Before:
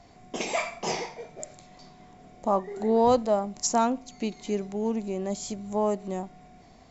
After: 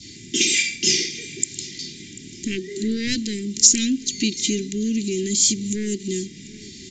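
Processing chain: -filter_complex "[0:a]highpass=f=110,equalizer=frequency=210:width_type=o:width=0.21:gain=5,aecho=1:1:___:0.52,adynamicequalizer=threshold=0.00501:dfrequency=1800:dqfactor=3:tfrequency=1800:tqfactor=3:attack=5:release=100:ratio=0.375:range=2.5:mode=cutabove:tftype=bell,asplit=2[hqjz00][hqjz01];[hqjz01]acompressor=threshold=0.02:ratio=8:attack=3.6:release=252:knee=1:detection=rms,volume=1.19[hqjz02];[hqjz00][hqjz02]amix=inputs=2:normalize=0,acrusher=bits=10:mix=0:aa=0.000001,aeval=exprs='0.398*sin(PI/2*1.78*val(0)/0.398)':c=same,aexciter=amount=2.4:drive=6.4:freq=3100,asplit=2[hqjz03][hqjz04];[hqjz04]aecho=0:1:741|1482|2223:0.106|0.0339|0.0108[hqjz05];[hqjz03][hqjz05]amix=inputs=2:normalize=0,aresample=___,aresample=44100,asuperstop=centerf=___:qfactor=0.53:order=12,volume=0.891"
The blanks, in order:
2.5, 16000, 820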